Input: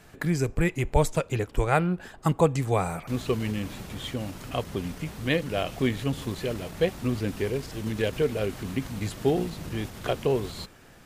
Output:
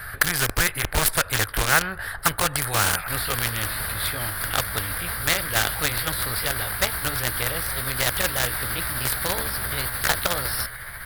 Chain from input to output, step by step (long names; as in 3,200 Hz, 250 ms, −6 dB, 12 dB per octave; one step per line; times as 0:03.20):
pitch glide at a constant tempo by +4.5 semitones starting unshifted
drawn EQ curve 100 Hz 0 dB, 220 Hz −25 dB, 340 Hz −24 dB, 560 Hz −14 dB, 950 Hz −11 dB, 1,600 Hz +9 dB, 2,600 Hz −14 dB, 4,700 Hz −4 dB, 6,800 Hz −29 dB, 9,700 Hz +7 dB
in parallel at −6 dB: bit reduction 5 bits
on the sum: high-shelf EQ 8,300 Hz −5 dB
every bin compressed towards the loudest bin 2 to 1
level +7 dB